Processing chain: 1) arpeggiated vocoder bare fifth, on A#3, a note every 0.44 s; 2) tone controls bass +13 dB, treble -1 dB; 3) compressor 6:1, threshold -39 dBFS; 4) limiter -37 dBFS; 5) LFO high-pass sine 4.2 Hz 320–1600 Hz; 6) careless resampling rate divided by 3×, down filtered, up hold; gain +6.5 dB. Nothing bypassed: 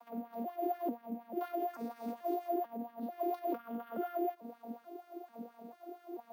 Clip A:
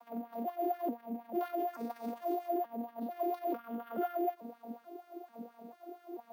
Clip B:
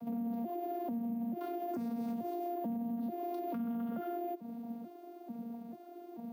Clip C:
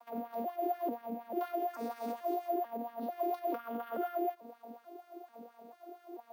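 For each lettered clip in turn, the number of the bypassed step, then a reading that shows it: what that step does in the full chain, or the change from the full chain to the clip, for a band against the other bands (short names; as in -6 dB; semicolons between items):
3, mean gain reduction 9.0 dB; 5, crest factor change -7.0 dB; 2, 250 Hz band -3.5 dB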